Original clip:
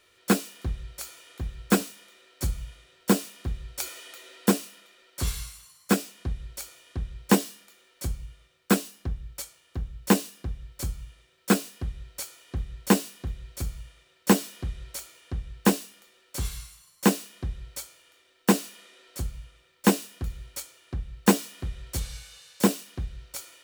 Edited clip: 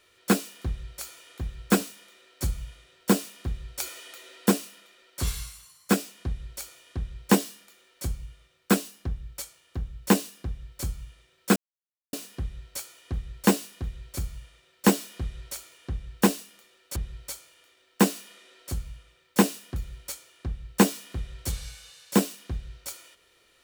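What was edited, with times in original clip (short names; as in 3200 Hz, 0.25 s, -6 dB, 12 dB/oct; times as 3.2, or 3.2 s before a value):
11.56 insert silence 0.57 s
16.39–17.44 cut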